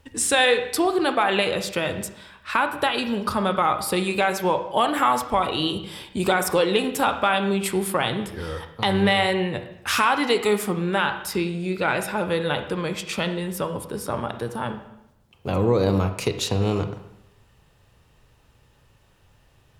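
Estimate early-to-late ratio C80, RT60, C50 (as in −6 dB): 12.0 dB, 0.85 s, 9.5 dB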